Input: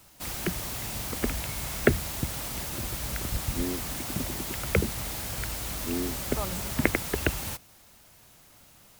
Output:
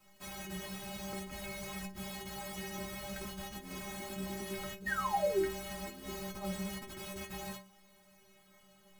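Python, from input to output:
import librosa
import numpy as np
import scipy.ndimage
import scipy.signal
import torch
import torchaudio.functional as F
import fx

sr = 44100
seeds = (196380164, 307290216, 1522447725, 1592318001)

p1 = fx.high_shelf(x, sr, hz=4500.0, db=-10.5)
p2 = fx.hum_notches(p1, sr, base_hz=60, count=6)
p3 = fx.over_compress(p2, sr, threshold_db=-33.0, ratio=-0.5)
p4 = fx.spec_paint(p3, sr, seeds[0], shape='fall', start_s=4.86, length_s=0.61, low_hz=280.0, high_hz=1900.0, level_db=-26.0)
p5 = fx.stiff_resonator(p4, sr, f0_hz=190.0, decay_s=0.37, stiffness=0.008)
p6 = p5 + fx.room_early_taps(p5, sr, ms=(15, 54), db=(-6.5, -14.0), dry=0)
y = F.gain(torch.from_numpy(p6), 5.5).numpy()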